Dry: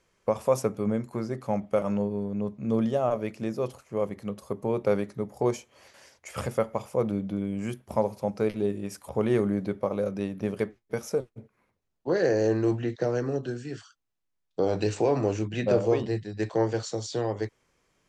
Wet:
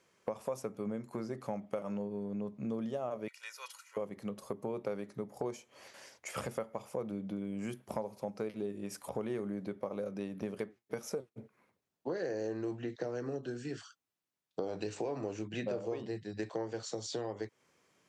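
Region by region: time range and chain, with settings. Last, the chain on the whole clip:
0:03.28–0:03.97: high-pass filter 1,300 Hz 24 dB per octave + comb filter 2.1 ms, depth 86%
whole clip: high-pass filter 140 Hz 12 dB per octave; downward compressor 4 to 1, threshold −36 dBFS

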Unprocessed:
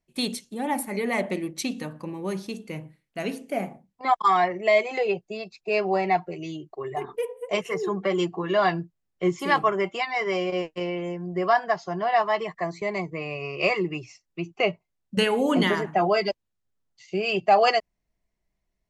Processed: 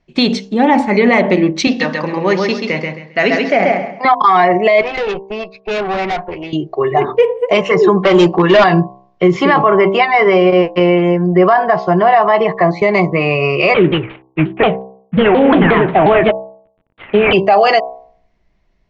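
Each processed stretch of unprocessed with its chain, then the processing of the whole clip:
0:01.67–0:04.05: loudspeaker in its box 250–7,500 Hz, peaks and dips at 320 Hz −5 dB, 1,900 Hz +8 dB, 5,200 Hz +8 dB + repeating echo 134 ms, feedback 26%, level −4 dB
0:04.81–0:06.53: low-pass filter 2,000 Hz + spectral tilt +3 dB per octave + tube saturation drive 34 dB, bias 0.75
0:07.98–0:08.64: high-shelf EQ 6,500 Hz +11 dB + hard clipping −23 dBFS
0:09.33–0:12.79: low-pass filter 2,100 Hz 6 dB per octave + one half of a high-frequency compander encoder only
0:13.74–0:17.33: variable-slope delta modulation 16 kbit/s + pitch modulation by a square or saw wave saw down 5.6 Hz, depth 250 cents
whole clip: Bessel low-pass filter 3,600 Hz, order 8; hum removal 64.98 Hz, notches 17; boost into a limiter +20 dB; level −1 dB

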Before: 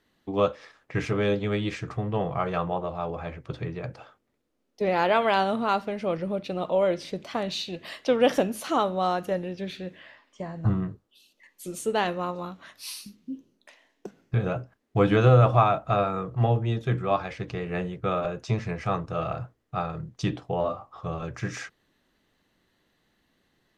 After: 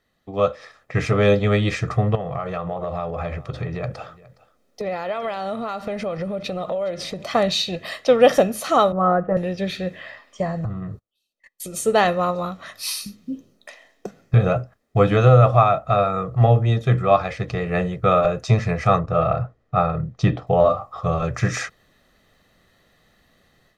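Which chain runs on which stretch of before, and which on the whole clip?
0:02.15–0:07.26: downward compressor 16 to 1, threshold −33 dBFS + single-tap delay 415 ms −21 dB
0:08.92–0:09.37: low-pass filter 1,500 Hz 24 dB per octave + comb filter 6.1 ms, depth 61% + multiband upward and downward expander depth 40%
0:10.64–0:11.76: noise gate −53 dBFS, range −27 dB + downward compressor, threshold −37 dBFS
0:18.99–0:20.47: low-pass filter 7,100 Hz + high-shelf EQ 3,500 Hz −11.5 dB
whole clip: parametric band 2,900 Hz −4.5 dB 0.25 octaves; comb filter 1.6 ms, depth 47%; automatic gain control gain up to 11 dB; level −1 dB

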